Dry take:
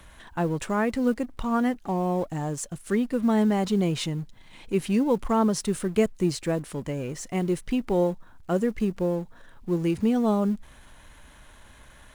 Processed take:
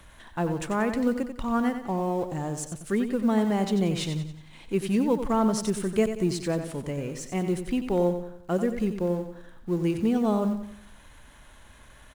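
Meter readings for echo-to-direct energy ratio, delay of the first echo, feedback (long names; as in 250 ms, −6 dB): −8.0 dB, 91 ms, 43%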